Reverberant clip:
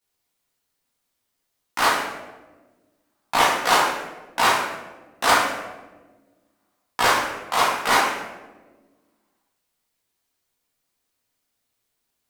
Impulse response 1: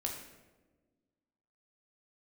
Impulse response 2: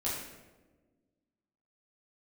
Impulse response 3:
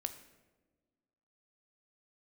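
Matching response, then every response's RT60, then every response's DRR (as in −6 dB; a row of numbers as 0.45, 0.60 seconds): 2; 1.3, 1.3, 1.3 seconds; 0.0, −8.5, 8.0 decibels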